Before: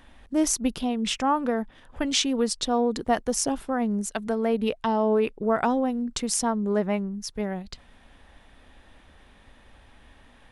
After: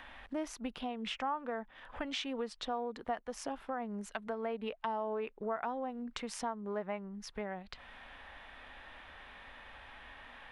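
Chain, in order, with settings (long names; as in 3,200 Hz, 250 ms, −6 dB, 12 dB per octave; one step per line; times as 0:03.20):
harmonic and percussive parts rebalanced percussive −4 dB
three-way crossover with the lows and the highs turned down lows −12 dB, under 580 Hz, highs −19 dB, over 3,300 Hz
downward compressor 2.5 to 1, threshold −47 dBFS, peak gain reduction 17 dB
one half of a high-frequency compander encoder only
level +6 dB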